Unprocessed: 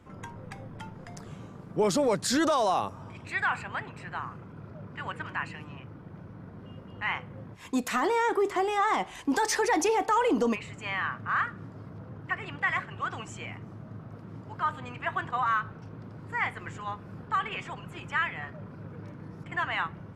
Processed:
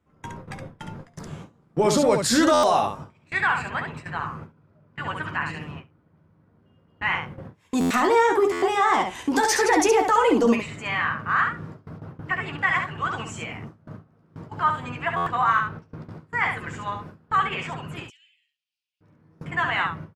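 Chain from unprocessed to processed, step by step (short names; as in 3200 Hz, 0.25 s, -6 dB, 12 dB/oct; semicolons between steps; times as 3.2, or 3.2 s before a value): 18.03–19.01 elliptic high-pass 2800 Hz, stop band 60 dB; early reflections 13 ms -6.5 dB, 69 ms -5 dB; gate with hold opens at -31 dBFS; stuck buffer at 2.53/7.8/8.52/15.16, samples 512, times 8; gain +4.5 dB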